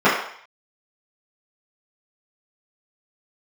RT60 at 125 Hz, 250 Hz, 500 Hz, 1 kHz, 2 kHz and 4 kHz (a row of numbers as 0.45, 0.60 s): 0.30, 0.40, 0.55, 0.65, 0.65, 0.65 s